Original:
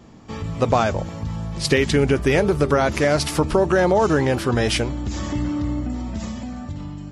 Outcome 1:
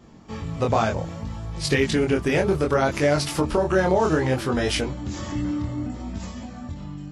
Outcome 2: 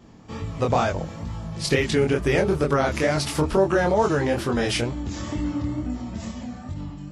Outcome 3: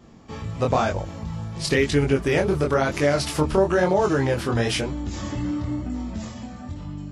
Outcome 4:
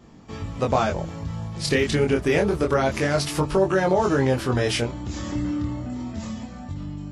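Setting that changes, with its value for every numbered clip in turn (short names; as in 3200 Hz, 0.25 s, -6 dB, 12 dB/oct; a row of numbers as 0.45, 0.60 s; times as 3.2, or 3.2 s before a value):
chorus, rate: 0.64, 2.2, 1, 0.28 Hz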